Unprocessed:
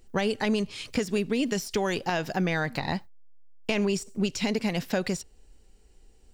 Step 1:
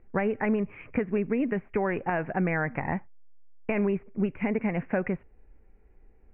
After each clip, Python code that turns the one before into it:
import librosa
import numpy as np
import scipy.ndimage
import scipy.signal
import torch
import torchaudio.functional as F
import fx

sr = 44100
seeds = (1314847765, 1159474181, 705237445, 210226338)

y = scipy.signal.sosfilt(scipy.signal.butter(12, 2400.0, 'lowpass', fs=sr, output='sos'), x)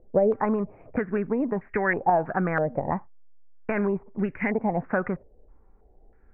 y = fx.filter_held_lowpass(x, sr, hz=3.1, low_hz=580.0, high_hz=1800.0)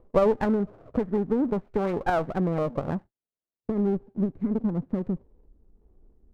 y = fx.filter_sweep_lowpass(x, sr, from_hz=750.0, to_hz=310.0, start_s=1.31, end_s=4.58, q=1.1)
y = fx.running_max(y, sr, window=17)